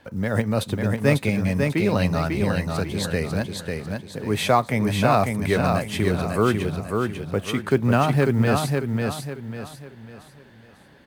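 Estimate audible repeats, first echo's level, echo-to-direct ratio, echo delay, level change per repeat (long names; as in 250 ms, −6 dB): 4, −4.0 dB, −3.5 dB, 546 ms, −9.0 dB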